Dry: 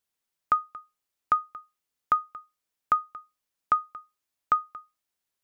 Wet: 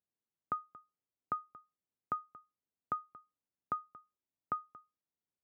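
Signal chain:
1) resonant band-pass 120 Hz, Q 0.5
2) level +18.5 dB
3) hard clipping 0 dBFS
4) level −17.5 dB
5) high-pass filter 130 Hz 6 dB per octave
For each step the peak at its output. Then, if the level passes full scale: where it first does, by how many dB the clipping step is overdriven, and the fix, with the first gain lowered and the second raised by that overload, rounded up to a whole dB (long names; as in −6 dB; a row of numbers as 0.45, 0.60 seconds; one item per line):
−22.5, −4.0, −4.0, −21.5, −22.5 dBFS
no step passes full scale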